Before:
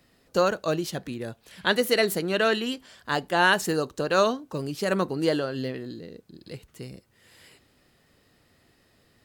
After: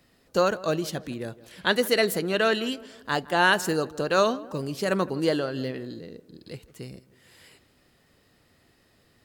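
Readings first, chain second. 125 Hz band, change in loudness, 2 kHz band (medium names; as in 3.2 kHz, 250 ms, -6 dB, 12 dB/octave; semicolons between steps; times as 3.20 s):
0.0 dB, 0.0 dB, 0.0 dB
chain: tape echo 161 ms, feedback 54%, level -17.5 dB, low-pass 1.4 kHz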